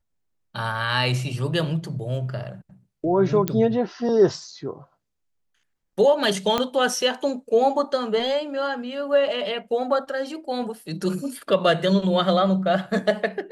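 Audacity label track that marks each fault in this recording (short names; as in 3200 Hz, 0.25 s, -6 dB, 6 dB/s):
3.480000	3.480000	pop -8 dBFS
6.580000	6.580000	pop -8 dBFS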